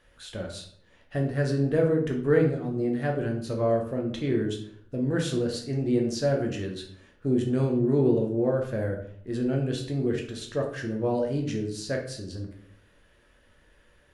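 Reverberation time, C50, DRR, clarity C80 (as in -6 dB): 0.60 s, 6.5 dB, 0.5 dB, 10.5 dB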